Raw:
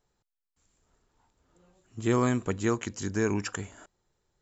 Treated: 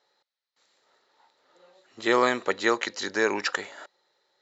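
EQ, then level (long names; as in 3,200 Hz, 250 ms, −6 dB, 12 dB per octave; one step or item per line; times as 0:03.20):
loudspeaker in its box 380–5,300 Hz, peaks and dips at 380 Hz +3 dB, 550 Hz +10 dB, 850 Hz +7 dB, 1,300 Hz +5 dB, 1,900 Hz +9 dB, 4,000 Hz +10 dB
high-shelf EQ 2,900 Hz +9 dB
+1.5 dB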